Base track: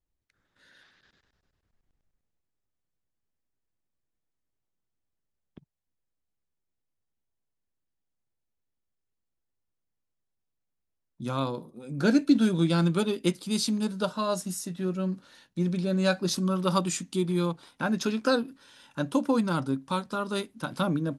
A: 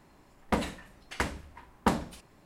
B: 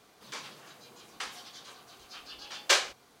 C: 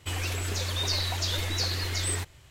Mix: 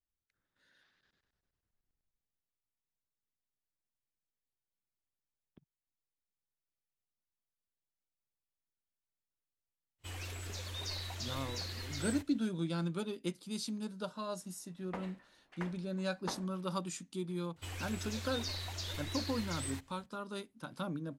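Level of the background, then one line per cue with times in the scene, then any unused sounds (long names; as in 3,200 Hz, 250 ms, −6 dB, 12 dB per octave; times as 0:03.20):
base track −12 dB
0:09.98: mix in C −12.5 dB, fades 0.10 s
0:14.41: mix in A −13.5 dB + bass and treble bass −11 dB, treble −13 dB
0:17.56: mix in C −12 dB
not used: B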